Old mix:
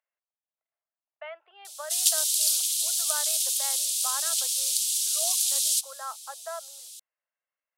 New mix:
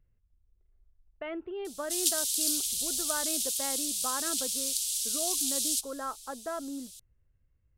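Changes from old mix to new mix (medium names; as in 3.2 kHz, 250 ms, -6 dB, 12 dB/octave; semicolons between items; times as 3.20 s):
background -5.0 dB; master: remove steep high-pass 600 Hz 48 dB/octave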